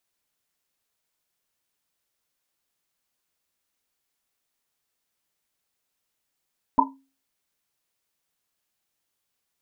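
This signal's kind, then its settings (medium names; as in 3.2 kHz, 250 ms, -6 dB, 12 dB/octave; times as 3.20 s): Risset drum, pitch 270 Hz, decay 0.36 s, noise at 950 Hz, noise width 130 Hz, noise 70%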